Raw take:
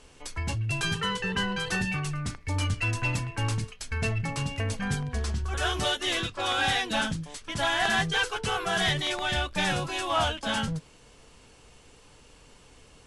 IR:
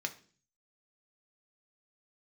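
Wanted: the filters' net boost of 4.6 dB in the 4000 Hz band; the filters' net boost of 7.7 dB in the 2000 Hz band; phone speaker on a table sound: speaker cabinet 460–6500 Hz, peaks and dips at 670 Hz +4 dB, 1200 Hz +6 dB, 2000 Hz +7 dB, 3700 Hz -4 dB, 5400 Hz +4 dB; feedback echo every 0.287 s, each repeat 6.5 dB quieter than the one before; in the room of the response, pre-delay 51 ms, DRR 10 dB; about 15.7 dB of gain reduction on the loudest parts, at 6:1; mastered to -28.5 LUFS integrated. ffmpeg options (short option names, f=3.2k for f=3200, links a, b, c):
-filter_complex "[0:a]equalizer=f=2k:t=o:g=4,equalizer=f=4k:t=o:g=6,acompressor=threshold=-37dB:ratio=6,aecho=1:1:287|574|861|1148|1435|1722:0.473|0.222|0.105|0.0491|0.0231|0.0109,asplit=2[a][b];[1:a]atrim=start_sample=2205,adelay=51[c];[b][c]afir=irnorm=-1:irlink=0,volume=-12dB[d];[a][d]amix=inputs=2:normalize=0,highpass=f=460:w=0.5412,highpass=f=460:w=1.3066,equalizer=f=670:t=q:w=4:g=4,equalizer=f=1.2k:t=q:w=4:g=6,equalizer=f=2k:t=q:w=4:g=7,equalizer=f=3.7k:t=q:w=4:g=-4,equalizer=f=5.4k:t=q:w=4:g=4,lowpass=f=6.5k:w=0.5412,lowpass=f=6.5k:w=1.3066,volume=7dB"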